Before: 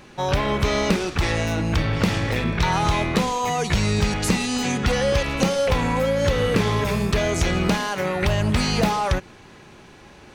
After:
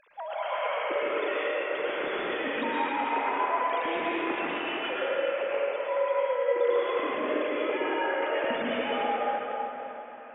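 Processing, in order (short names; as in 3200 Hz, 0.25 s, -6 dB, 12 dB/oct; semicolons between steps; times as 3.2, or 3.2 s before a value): sine-wave speech; compressor, threshold -25 dBFS, peak gain reduction 17.5 dB; plate-style reverb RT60 3.8 s, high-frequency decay 0.6×, pre-delay 95 ms, DRR -8 dB; gain -9 dB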